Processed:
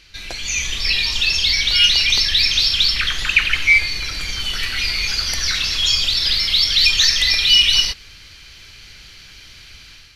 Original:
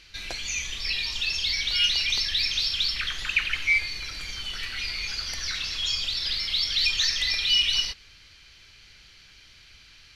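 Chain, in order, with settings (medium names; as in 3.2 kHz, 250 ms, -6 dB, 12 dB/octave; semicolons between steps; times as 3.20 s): treble shelf 11 kHz +4.5 dB, from 4.40 s +10.5 dB; level rider gain up to 7 dB; bass shelf 490 Hz +2.5 dB; trim +2.5 dB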